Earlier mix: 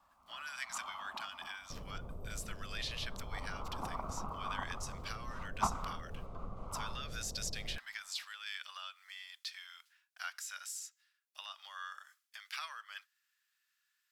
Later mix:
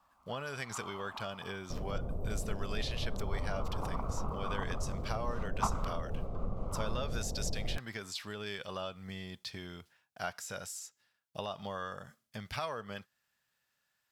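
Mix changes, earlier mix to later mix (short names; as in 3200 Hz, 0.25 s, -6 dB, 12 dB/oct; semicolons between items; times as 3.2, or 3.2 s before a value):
speech: remove HPF 1300 Hz 24 dB/oct; second sound +8.5 dB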